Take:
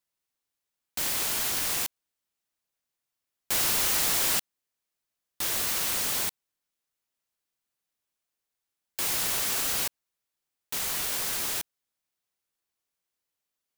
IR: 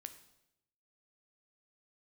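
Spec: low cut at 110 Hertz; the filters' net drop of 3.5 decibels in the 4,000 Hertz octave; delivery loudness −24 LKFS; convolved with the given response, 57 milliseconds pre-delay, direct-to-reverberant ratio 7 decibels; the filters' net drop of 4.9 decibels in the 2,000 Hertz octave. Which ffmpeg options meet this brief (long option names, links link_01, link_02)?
-filter_complex "[0:a]highpass=110,equalizer=frequency=2000:width_type=o:gain=-5.5,equalizer=frequency=4000:width_type=o:gain=-3,asplit=2[link_01][link_02];[1:a]atrim=start_sample=2205,adelay=57[link_03];[link_02][link_03]afir=irnorm=-1:irlink=0,volume=-2dB[link_04];[link_01][link_04]amix=inputs=2:normalize=0,volume=2dB"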